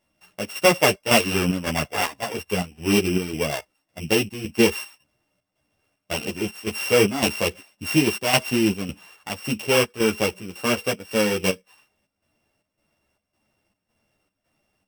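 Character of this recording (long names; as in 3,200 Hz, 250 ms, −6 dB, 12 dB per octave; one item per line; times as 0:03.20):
a buzz of ramps at a fixed pitch in blocks of 16 samples
chopped level 1.8 Hz, depth 65%, duty 70%
a shimmering, thickened sound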